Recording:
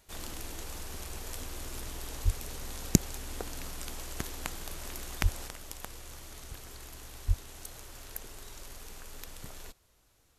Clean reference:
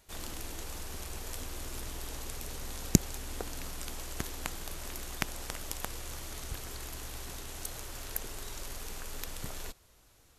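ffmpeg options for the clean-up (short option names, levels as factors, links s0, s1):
-filter_complex "[0:a]asplit=3[s0][s1][s2];[s0]afade=t=out:st=2.24:d=0.02[s3];[s1]highpass=f=140:w=0.5412,highpass=f=140:w=1.3066,afade=t=in:st=2.24:d=0.02,afade=t=out:st=2.36:d=0.02[s4];[s2]afade=t=in:st=2.36:d=0.02[s5];[s3][s4][s5]amix=inputs=3:normalize=0,asplit=3[s6][s7][s8];[s6]afade=t=out:st=5.22:d=0.02[s9];[s7]highpass=f=140:w=0.5412,highpass=f=140:w=1.3066,afade=t=in:st=5.22:d=0.02,afade=t=out:st=5.34:d=0.02[s10];[s8]afade=t=in:st=5.34:d=0.02[s11];[s9][s10][s11]amix=inputs=3:normalize=0,asplit=3[s12][s13][s14];[s12]afade=t=out:st=7.27:d=0.02[s15];[s13]highpass=f=140:w=0.5412,highpass=f=140:w=1.3066,afade=t=in:st=7.27:d=0.02,afade=t=out:st=7.39:d=0.02[s16];[s14]afade=t=in:st=7.39:d=0.02[s17];[s15][s16][s17]amix=inputs=3:normalize=0,asetnsamples=n=441:p=0,asendcmd='5.48 volume volume 5dB',volume=1"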